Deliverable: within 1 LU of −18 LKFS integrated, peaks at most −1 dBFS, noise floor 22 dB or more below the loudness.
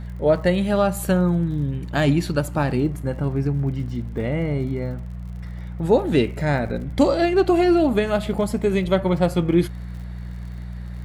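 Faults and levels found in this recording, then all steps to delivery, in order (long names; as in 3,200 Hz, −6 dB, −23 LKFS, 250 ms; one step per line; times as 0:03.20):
crackle rate 54 per second; mains hum 60 Hz; hum harmonics up to 180 Hz; level of the hum −30 dBFS; integrated loudness −21.5 LKFS; sample peak −5.0 dBFS; target loudness −18.0 LKFS
→ click removal
hum removal 60 Hz, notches 3
level +3.5 dB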